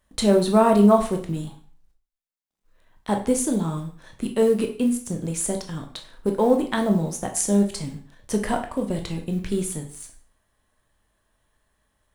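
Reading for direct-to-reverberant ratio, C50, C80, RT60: 3.5 dB, 10.0 dB, 14.0 dB, 0.45 s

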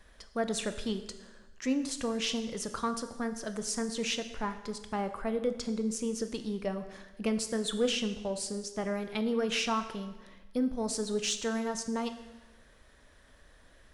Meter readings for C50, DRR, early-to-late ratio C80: 11.0 dB, 8.5 dB, 12.5 dB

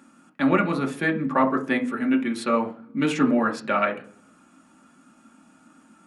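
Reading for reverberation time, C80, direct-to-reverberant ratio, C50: 0.45 s, 19.0 dB, 1.0 dB, 13.5 dB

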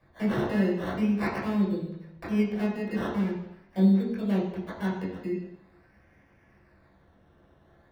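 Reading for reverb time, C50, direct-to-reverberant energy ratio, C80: 0.80 s, 4.0 dB, −7.0 dB, 6.5 dB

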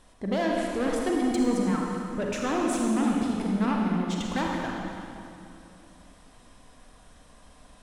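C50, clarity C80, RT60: −0.5 dB, 0.5 dB, 2.7 s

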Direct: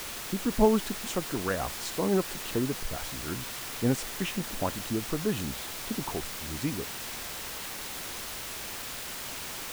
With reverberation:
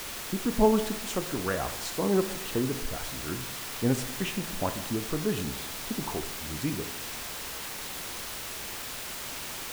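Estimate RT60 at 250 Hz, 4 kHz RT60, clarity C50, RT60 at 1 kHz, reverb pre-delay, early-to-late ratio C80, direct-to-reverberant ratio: 1.1 s, 1.0 s, 10.5 dB, 1.1 s, 19 ms, 12.0 dB, 8.5 dB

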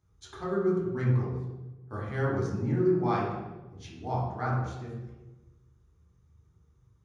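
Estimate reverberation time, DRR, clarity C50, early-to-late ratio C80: 1.1 s, −7.0 dB, 0.5 dB, 3.5 dB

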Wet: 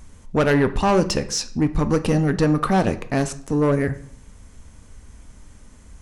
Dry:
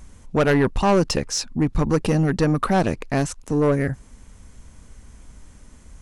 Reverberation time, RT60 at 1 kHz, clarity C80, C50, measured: 0.60 s, 0.55 s, 18.5 dB, 15.0 dB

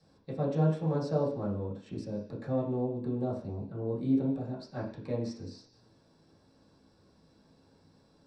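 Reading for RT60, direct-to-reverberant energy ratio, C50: 0.50 s, −7.0 dB, 7.0 dB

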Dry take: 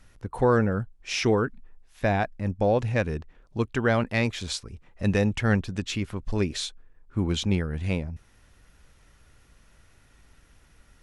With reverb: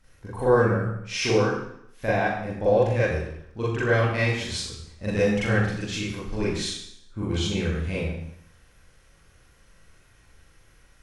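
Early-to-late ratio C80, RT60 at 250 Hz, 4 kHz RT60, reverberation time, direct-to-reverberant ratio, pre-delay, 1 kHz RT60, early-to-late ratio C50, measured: 4.0 dB, 0.75 s, 0.70 s, 0.70 s, −9.5 dB, 38 ms, 0.70 s, 1.5 dB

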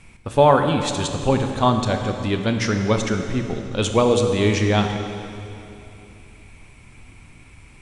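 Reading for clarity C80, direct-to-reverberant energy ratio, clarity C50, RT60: 6.5 dB, 5.0 dB, 6.0 dB, 2.9 s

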